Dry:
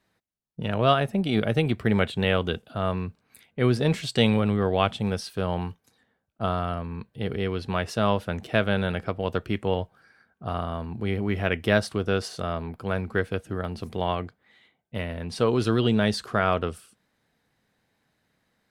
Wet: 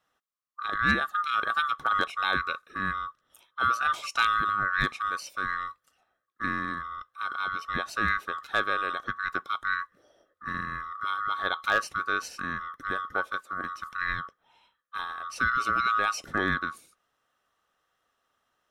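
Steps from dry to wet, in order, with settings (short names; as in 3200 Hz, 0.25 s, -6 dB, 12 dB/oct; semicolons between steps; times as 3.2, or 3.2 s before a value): band-swap scrambler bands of 1000 Hz; hard clip -9 dBFS, distortion -31 dB; gain -4 dB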